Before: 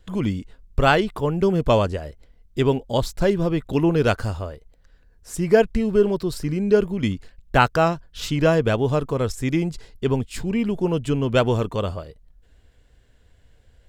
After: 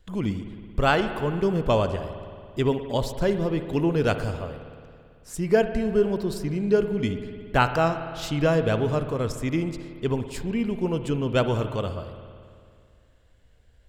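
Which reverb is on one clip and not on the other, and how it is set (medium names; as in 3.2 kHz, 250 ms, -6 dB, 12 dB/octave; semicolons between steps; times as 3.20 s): spring tank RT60 2.3 s, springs 55 ms, chirp 25 ms, DRR 9 dB; trim -4 dB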